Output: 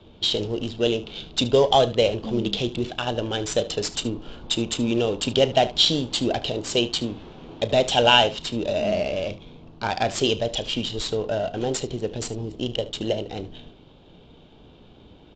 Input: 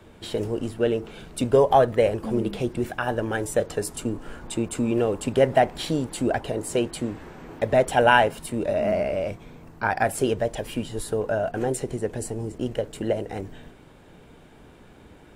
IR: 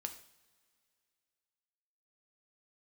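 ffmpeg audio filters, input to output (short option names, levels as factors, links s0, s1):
-filter_complex "[0:a]highshelf=f=2500:t=q:w=3:g=10.5,adynamicsmooth=sensitivity=5:basefreq=1800,aresample=16000,aresample=44100,asplit=2[s0][s1];[s1]aecho=0:1:34|74:0.15|0.141[s2];[s0][s2]amix=inputs=2:normalize=0"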